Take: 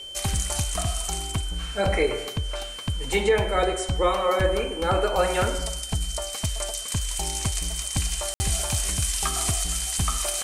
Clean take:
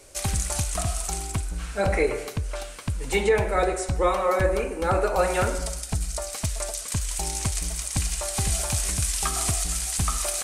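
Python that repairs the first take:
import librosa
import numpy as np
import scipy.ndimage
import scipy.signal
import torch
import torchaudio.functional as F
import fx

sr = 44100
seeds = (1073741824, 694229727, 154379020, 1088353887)

y = fx.fix_declip(x, sr, threshold_db=-11.5)
y = fx.notch(y, sr, hz=3100.0, q=30.0)
y = fx.fix_ambience(y, sr, seeds[0], print_start_s=2.38, print_end_s=2.88, start_s=8.34, end_s=8.4)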